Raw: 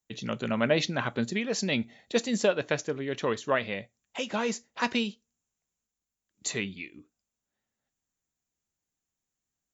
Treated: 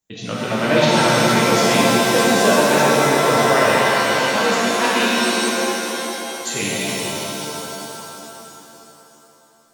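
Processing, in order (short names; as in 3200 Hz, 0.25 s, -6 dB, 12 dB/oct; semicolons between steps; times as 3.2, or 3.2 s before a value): analogue delay 0.417 s, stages 2048, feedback 33%, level -8 dB; shimmer reverb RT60 3.2 s, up +7 st, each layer -2 dB, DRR -7 dB; gain +3 dB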